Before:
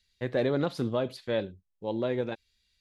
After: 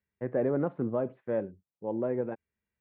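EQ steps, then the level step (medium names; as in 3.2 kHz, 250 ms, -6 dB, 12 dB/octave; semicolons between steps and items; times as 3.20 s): Gaussian low-pass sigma 5.4 samples; high-pass 130 Hz 12 dB/octave; distance through air 59 m; 0.0 dB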